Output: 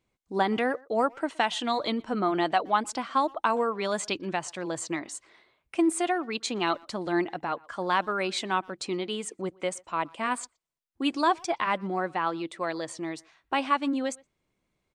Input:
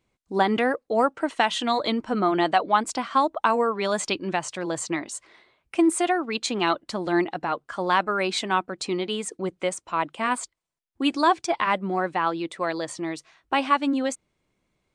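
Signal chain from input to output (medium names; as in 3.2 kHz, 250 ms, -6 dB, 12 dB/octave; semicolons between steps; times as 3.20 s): speakerphone echo 120 ms, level -25 dB; trim -4 dB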